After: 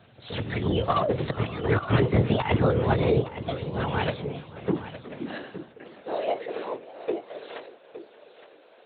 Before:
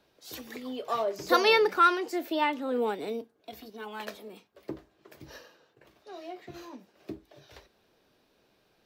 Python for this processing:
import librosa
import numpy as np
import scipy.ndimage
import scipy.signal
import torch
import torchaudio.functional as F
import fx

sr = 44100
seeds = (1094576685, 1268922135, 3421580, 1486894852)

p1 = fx.hum_notches(x, sr, base_hz=60, count=7)
p2 = fx.lpc_vocoder(p1, sr, seeds[0], excitation='whisper', order=10)
p3 = fx.over_compress(p2, sr, threshold_db=-31.0, ratio=-0.5)
p4 = fx.filter_sweep_highpass(p3, sr, from_hz=110.0, to_hz=460.0, start_s=3.97, end_s=6.29, q=2.5)
p5 = p4 + fx.echo_single(p4, sr, ms=864, db=-13.0, dry=0)
p6 = fx.echo_warbled(p5, sr, ms=585, feedback_pct=35, rate_hz=2.8, cents=200, wet_db=-20.0)
y = F.gain(torch.from_numpy(p6), 7.5).numpy()